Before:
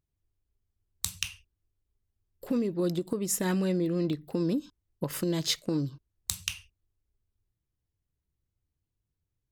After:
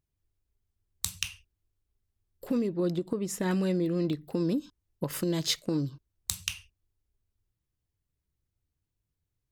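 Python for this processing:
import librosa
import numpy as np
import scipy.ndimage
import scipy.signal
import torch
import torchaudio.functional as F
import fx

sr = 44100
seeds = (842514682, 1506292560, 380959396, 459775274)

y = fx.lowpass(x, sr, hz=3400.0, slope=6, at=(2.69, 3.51))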